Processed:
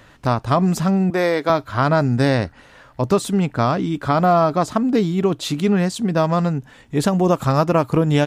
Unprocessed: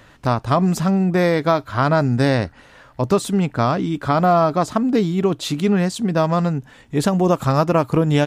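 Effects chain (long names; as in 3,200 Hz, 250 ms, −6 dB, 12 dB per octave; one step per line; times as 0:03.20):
0:01.10–0:01.50: high-pass filter 290 Hz 12 dB per octave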